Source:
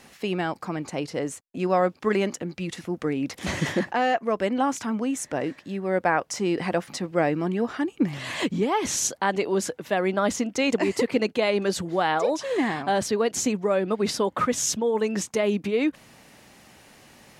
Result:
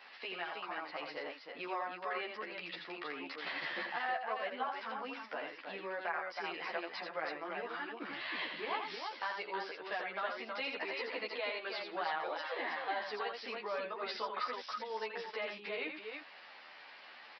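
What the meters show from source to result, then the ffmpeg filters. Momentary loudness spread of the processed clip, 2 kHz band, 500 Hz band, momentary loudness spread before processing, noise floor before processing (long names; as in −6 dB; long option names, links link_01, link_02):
6 LU, −7.5 dB, −17.0 dB, 7 LU, −54 dBFS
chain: -filter_complex "[0:a]highpass=1000,highshelf=frequency=3200:gain=-8.5,acompressor=threshold=-47dB:ratio=2,aecho=1:1:84|320:0.501|0.562,aresample=11025,aresample=44100,asplit=2[link_01][link_02];[link_02]adelay=11.7,afreqshift=-1.6[link_03];[link_01][link_03]amix=inputs=2:normalize=1,volume=5.5dB"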